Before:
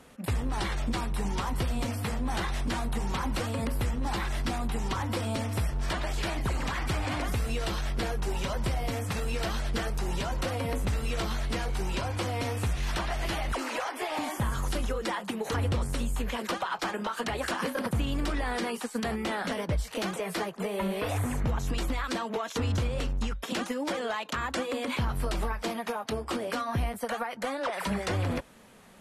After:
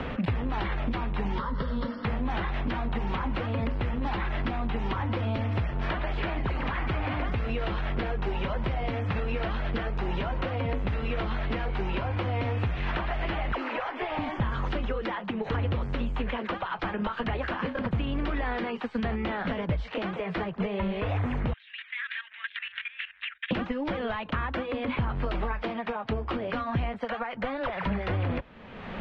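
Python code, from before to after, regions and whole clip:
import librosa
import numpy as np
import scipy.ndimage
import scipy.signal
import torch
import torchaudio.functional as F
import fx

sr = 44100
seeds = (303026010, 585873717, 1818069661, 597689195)

y = fx.chain(x, sr, fx.brickwall_lowpass(high_hz=5600.0),
    fx.fixed_phaser(hz=500.0, stages=8), at=(1.38, 2.05))
y = fx.chain(y, sr, fx.ellip_bandpass(low_hz=1700.0, high_hz=3700.0, order=3, stop_db=70),
    fx.level_steps(step_db=15), at=(21.53, 23.51))
y = scipy.signal.sosfilt(scipy.signal.butter(4, 3100.0, 'lowpass', fs=sr, output='sos'), y)
y = fx.band_squash(y, sr, depth_pct=100)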